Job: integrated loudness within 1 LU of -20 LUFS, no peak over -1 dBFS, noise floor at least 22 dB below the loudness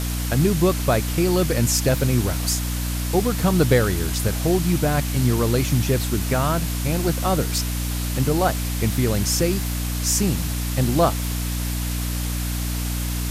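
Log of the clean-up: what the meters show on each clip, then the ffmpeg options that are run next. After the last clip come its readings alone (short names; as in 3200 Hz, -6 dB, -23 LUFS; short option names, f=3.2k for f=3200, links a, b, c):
hum 60 Hz; harmonics up to 300 Hz; hum level -23 dBFS; noise floor -25 dBFS; noise floor target -44 dBFS; loudness -21.5 LUFS; peak -4.5 dBFS; loudness target -20.0 LUFS
-> -af "bandreject=f=60:t=h:w=6,bandreject=f=120:t=h:w=6,bandreject=f=180:t=h:w=6,bandreject=f=240:t=h:w=6,bandreject=f=300:t=h:w=6"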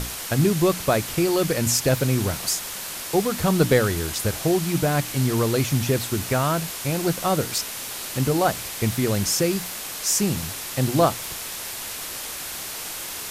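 hum none; noise floor -33 dBFS; noise floor target -45 dBFS
-> -af "afftdn=nr=12:nf=-33"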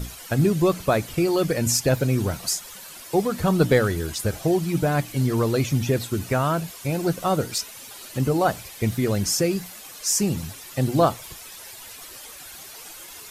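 noise floor -41 dBFS; noise floor target -46 dBFS
-> -af "afftdn=nr=6:nf=-41"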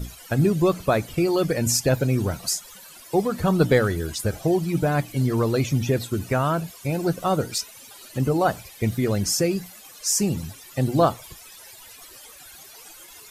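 noise floor -46 dBFS; loudness -23.5 LUFS; peak -6.0 dBFS; loudness target -20.0 LUFS
-> -af "volume=3.5dB"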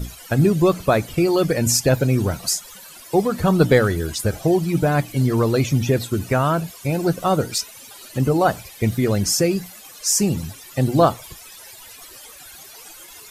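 loudness -20.0 LUFS; peak -2.5 dBFS; noise floor -42 dBFS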